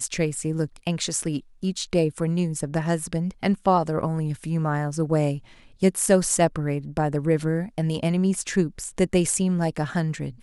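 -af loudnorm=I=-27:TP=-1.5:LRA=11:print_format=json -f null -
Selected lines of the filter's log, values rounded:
"input_i" : "-24.4",
"input_tp" : "-4.6",
"input_lra" : "1.4",
"input_thresh" : "-34.5",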